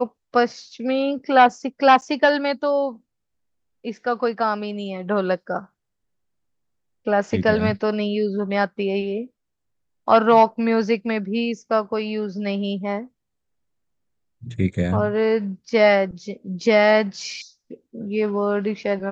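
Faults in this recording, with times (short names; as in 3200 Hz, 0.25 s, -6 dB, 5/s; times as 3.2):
2.01–2.02 gap 9 ms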